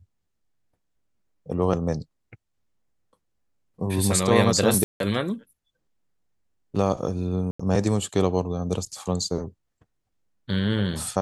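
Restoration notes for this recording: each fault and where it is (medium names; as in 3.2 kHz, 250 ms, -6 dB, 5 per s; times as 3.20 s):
4.84–5.00 s: dropout 162 ms
7.51–7.59 s: dropout 85 ms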